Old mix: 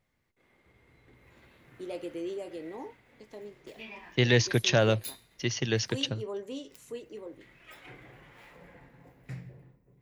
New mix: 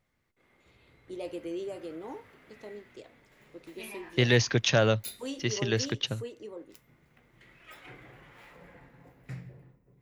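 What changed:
first voice: entry -0.70 s; master: add bell 1300 Hz +3 dB 0.35 oct

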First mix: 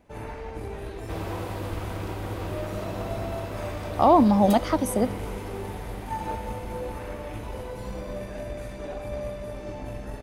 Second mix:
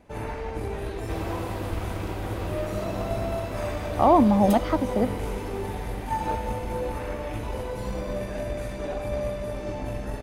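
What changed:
speech: add air absorption 180 m; first sound +4.0 dB

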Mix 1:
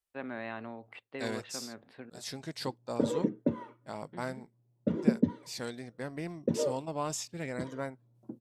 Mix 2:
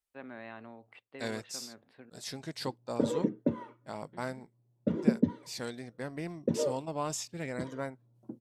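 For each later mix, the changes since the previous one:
first voice -6.0 dB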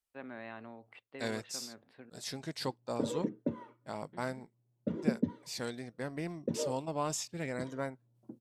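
background -5.0 dB

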